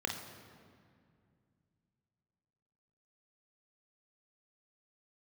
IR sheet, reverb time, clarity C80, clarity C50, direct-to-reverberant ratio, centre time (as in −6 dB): 2.2 s, 8.0 dB, 4.5 dB, 2.0 dB, 42 ms